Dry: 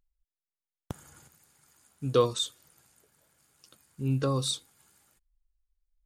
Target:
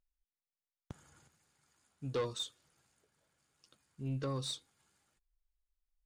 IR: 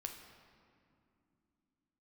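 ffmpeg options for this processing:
-af "highshelf=f=4k:g=6,asoftclip=type=tanh:threshold=-21dB,adynamicsmooth=sensitivity=1.5:basefreq=6k,volume=-8dB"

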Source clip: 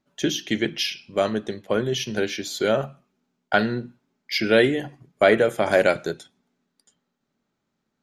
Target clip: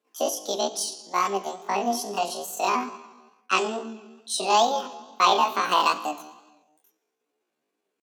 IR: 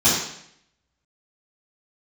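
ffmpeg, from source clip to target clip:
-filter_complex "[0:a]asplit=2[a][b];[1:a]atrim=start_sample=2205,afade=t=out:st=0.44:d=0.01,atrim=end_sample=19845,asetrate=24255,aresample=44100[c];[b][c]afir=irnorm=-1:irlink=0,volume=-36.5dB[d];[a][d]amix=inputs=2:normalize=0,flanger=delay=17:depth=7.1:speed=2.3,asetrate=80880,aresample=44100,atempo=0.545254,highpass=f=170:w=0.5412,highpass=f=170:w=1.3066"

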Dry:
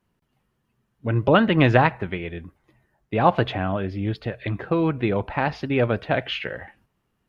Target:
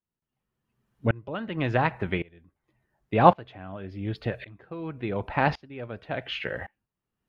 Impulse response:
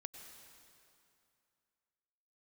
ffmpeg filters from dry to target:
-af "aeval=exprs='val(0)*pow(10,-26*if(lt(mod(-0.9*n/s,1),2*abs(-0.9)/1000),1-mod(-0.9*n/s,1)/(2*abs(-0.9)/1000),(mod(-0.9*n/s,1)-2*abs(-0.9)/1000)/(1-2*abs(-0.9)/1000))/20)':c=same,volume=3dB"

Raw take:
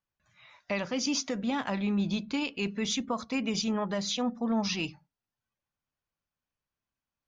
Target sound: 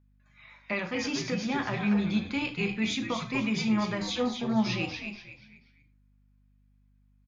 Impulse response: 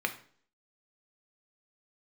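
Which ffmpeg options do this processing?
-filter_complex "[0:a]asplit=5[a][b][c][d][e];[b]adelay=241,afreqshift=-110,volume=-6.5dB[f];[c]adelay=482,afreqshift=-220,volume=-16.1dB[g];[d]adelay=723,afreqshift=-330,volume=-25.8dB[h];[e]adelay=964,afreqshift=-440,volume=-35.4dB[i];[a][f][g][h][i]amix=inputs=5:normalize=0[j];[1:a]atrim=start_sample=2205,afade=t=out:st=0.18:d=0.01,atrim=end_sample=8379[k];[j][k]afir=irnorm=-1:irlink=0,aeval=exprs='val(0)+0.00126*(sin(2*PI*50*n/s)+sin(2*PI*2*50*n/s)/2+sin(2*PI*3*50*n/s)/3+sin(2*PI*4*50*n/s)/4+sin(2*PI*5*50*n/s)/5)':c=same,volume=-4.5dB"

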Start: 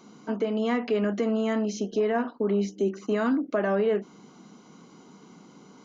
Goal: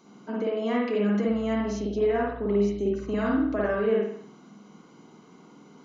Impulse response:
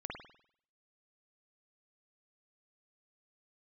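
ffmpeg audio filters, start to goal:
-filter_complex "[0:a]asettb=1/sr,asplit=3[a][b][c];[a]atrim=end=1.274[d];[b]atrim=start=1.27:end=3.74,asetpts=PTS-STARTPTS,afade=t=in:d=0.004:c=qsin,afade=t=out:st=2.466:d=0.004:c=qsin,aeval=exprs='val(0)+0.00562*(sin(2*PI*60*n/s)+sin(2*PI*2*60*n/s)/2+sin(2*PI*3*60*n/s)/3+sin(2*PI*4*60*n/s)/4+sin(2*PI*5*60*n/s)/5)':c=same[e];[c]atrim=start=3.736[f];[d][e]acrossfade=d=0.004:c1=hsin:c2=qsin[g];[g][f]acrossfade=d=0.004:c1=qsin:c2=hsin[h];[1:a]atrim=start_sample=2205,afade=t=out:st=0.39:d=0.01,atrim=end_sample=17640[i];[h][i]afir=irnorm=-1:irlink=0"

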